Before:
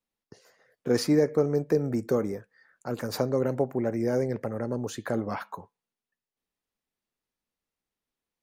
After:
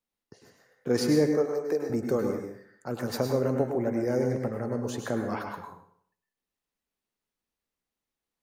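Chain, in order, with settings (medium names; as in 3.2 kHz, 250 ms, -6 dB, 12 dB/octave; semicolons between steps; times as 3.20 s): 1.32–1.90 s: high-pass 390 Hz 12 dB/octave; plate-style reverb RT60 0.61 s, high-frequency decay 0.85×, pre-delay 90 ms, DRR 3.5 dB; trim -1.5 dB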